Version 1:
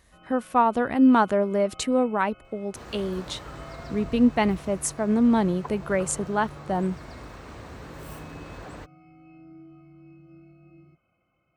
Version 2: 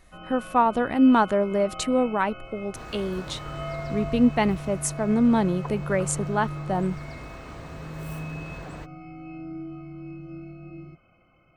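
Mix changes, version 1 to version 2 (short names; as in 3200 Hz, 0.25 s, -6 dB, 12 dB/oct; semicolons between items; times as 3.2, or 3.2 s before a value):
first sound +11.0 dB; master: remove HPF 48 Hz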